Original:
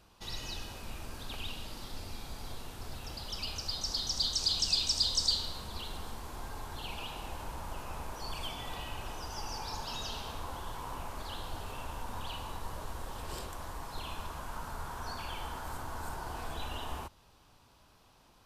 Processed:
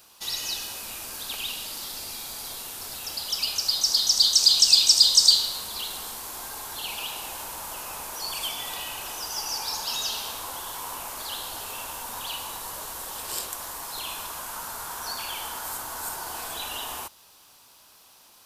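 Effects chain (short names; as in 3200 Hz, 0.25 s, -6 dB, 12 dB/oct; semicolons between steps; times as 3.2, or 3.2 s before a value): RIAA curve recording; gain +5 dB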